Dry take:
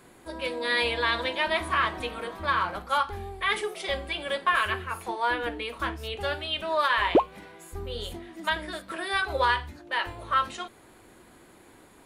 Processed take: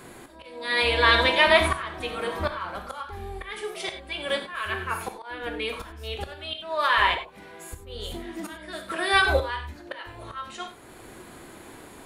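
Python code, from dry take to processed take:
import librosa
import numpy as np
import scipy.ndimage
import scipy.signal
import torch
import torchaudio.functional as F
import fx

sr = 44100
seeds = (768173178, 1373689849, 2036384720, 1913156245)

y = fx.auto_swell(x, sr, attack_ms=744.0)
y = fx.rev_gated(y, sr, seeds[0], gate_ms=120, shape='flat', drr_db=6.5)
y = y * 10.0 ** (8.0 / 20.0)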